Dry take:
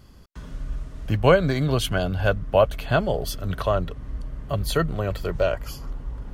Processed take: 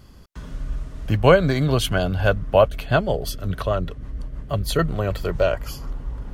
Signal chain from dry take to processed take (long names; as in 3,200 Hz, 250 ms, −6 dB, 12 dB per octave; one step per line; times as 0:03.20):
0:02.68–0:04.79: rotating-speaker cabinet horn 6.3 Hz
level +2.5 dB